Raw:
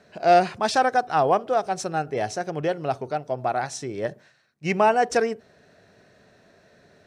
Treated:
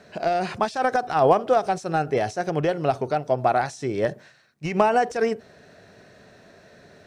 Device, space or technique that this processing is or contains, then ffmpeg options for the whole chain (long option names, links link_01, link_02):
de-esser from a sidechain: -filter_complex "[0:a]asplit=2[link_01][link_02];[link_02]highpass=4500,apad=whole_len=311401[link_03];[link_01][link_03]sidechaincompress=threshold=-42dB:ratio=16:attack=0.76:release=76,volume=5.5dB"